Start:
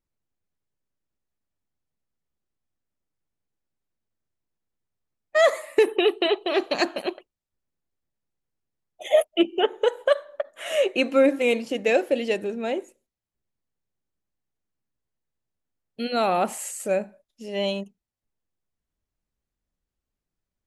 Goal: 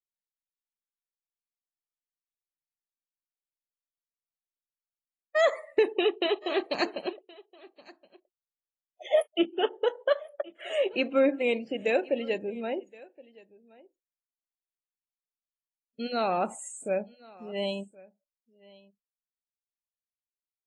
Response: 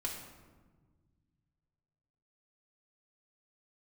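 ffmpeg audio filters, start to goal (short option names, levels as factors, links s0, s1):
-af "afftdn=nr=28:nf=-37,aecho=1:1:1071:0.0668,volume=0.562" -ar 22050 -c:a aac -b:a 32k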